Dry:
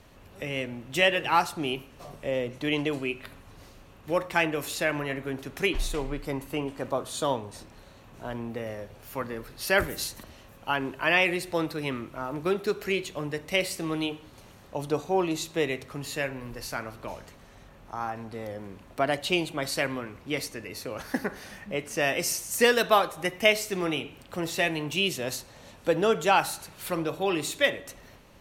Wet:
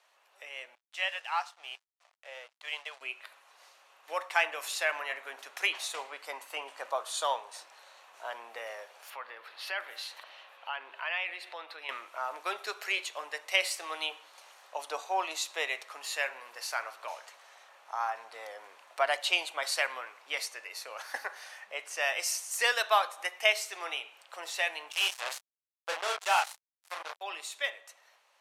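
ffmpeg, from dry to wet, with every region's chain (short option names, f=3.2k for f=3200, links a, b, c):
-filter_complex "[0:a]asettb=1/sr,asplit=3[a][b][c];[a]atrim=end=0.754[d];[b]atrim=start=0.75:end=3.01,asetpts=PTS-STARTPTS,afade=t=in:d=0.004:c=qsin,afade=t=out:st=2.256:d=0.004:c=qsin,highpass=570,lowpass=6.3k,aeval=exprs='sgn(val(0))*max(abs(val(0))-0.00596,0)':c=same[e];[c]atrim=start=3.006[f];[d][e]acrossfade=d=0.004:c1=hsin:c2=qsin[g];[g][f]acrossfade=d=0.004:c1=qsin:c2=hsin,asettb=1/sr,asplit=3[h][i][j];[h]atrim=end=9.104[k];[i]atrim=start=9.1:end=11.89,asetpts=PTS-STARTPTS,afade=t=in:d=0.004:c=qsin,afade=t=out:st=2.786:d=0.004:c=qsin,highshelf=f=4.8k:t=q:w=1.5:g=-10.5,acompressor=threshold=-41dB:ratio=2:attack=3.2:release=140:knee=1:detection=peak[l];[j]atrim=start=11.886[m];[k][l]acrossfade=d=0.004:c1=hsin:c2=qsin[n];[n][m]acrossfade=d=0.004:c1=qsin:c2=hsin,asettb=1/sr,asplit=3[o][p][q];[o]atrim=end=24.924[r];[p]atrim=start=24.92:end=27.21,asetpts=PTS-STARTPTS,afade=t=in:d=0.004:c=qsin,afade=t=out:st=2.286:d=0.004:c=qsin,lowshelf=f=150:t=q:w=3:g=6,asplit=2[s][t];[t]adelay=33,volume=-3.5dB[u];[s][u]amix=inputs=2:normalize=0,atrim=end_sample=100989,acrusher=bits=3:mix=0:aa=0.5[v];[q]atrim=start=27.206[w];[r][v]acrossfade=d=0.004:c1=hsin:c2=qsin[x];[x][w]acrossfade=d=0.004:c1=qsin:c2=hsin,highpass=f=690:w=0.5412,highpass=f=690:w=1.3066,dynaudnorm=f=780:g=9:m=11dB,lowpass=11k,volume=-8dB"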